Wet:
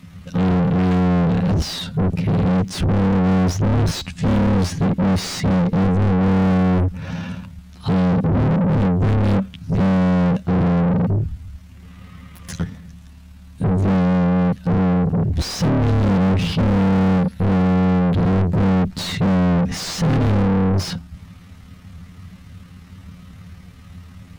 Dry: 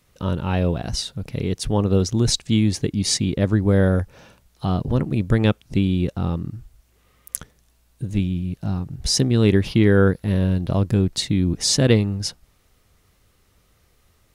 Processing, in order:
drawn EQ curve 200 Hz 0 dB, 380 Hz −27 dB, 2,800 Hz −20 dB
time stretch by overlap-add 1.7×, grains 54 ms
mid-hump overdrive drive 48 dB, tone 1,400 Hz, clips at −10 dBFS

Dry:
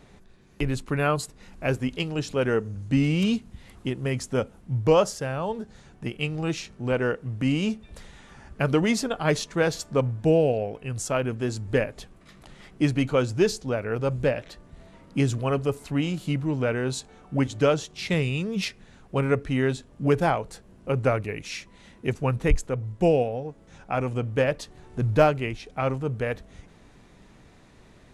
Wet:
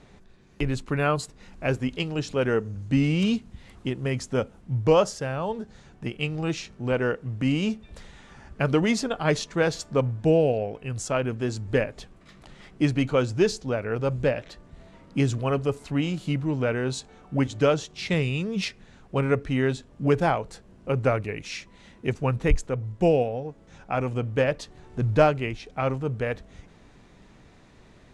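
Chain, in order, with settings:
low-pass filter 8,300 Hz 12 dB per octave

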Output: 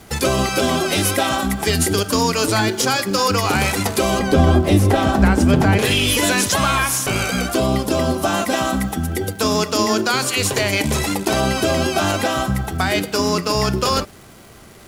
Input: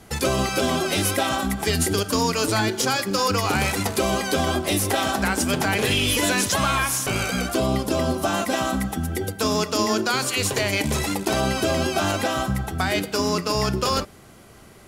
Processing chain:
0:04.19–0:05.79: spectral tilt −3 dB per octave
surface crackle 540 per second −41 dBFS
level +4 dB

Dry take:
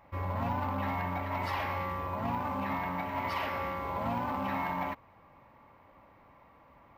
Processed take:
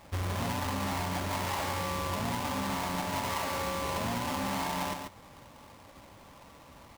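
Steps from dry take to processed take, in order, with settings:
each half-wave held at its own peak
single-tap delay 138 ms −10 dB
downward compressor, threshold −32 dBFS, peak gain reduction 7 dB
level +1.5 dB

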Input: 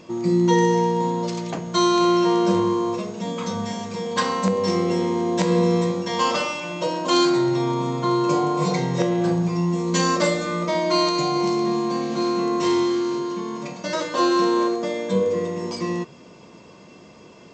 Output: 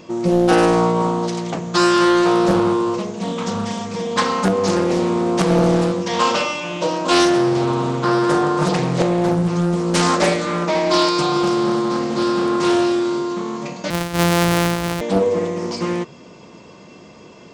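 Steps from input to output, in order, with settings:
0:13.90–0:15.01: samples sorted by size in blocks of 256 samples
highs frequency-modulated by the lows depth 0.62 ms
level +4 dB

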